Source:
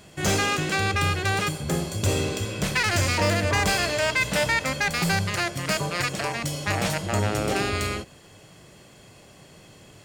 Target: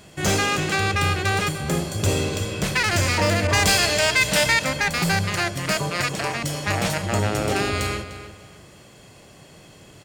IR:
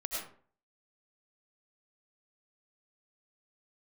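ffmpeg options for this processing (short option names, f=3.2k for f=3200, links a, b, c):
-filter_complex "[0:a]asplit=2[a][b];[b]adelay=299,lowpass=f=4.8k:p=1,volume=-12dB,asplit=2[c][d];[d]adelay=299,lowpass=f=4.8k:p=1,volume=0.28,asplit=2[e][f];[f]adelay=299,lowpass=f=4.8k:p=1,volume=0.28[g];[c][e][g]amix=inputs=3:normalize=0[h];[a][h]amix=inputs=2:normalize=0,asettb=1/sr,asplit=3[i][j][k];[i]atrim=end=3.474[l];[j]atrim=start=3.47:end=4.65,asetpts=PTS-STARTPTS,afade=t=in:d=0.004:c=qsin,afade=t=out:st=1.176:d=0.004:c=qsin,adynamicequalizer=threshold=0.02:dfrequency=2400:dqfactor=0.7:tfrequency=2400:tqfactor=0.7:attack=5:release=100:ratio=0.375:range=3:mode=boostabove:tftype=highshelf[m];[k]atrim=start=4.646[n];[l][m]acrossfade=d=0.004:c1=hsin:c2=qsin[o];[o][n]acrossfade=d=0.004:c1=qsin:c2=hsin,volume=2dB"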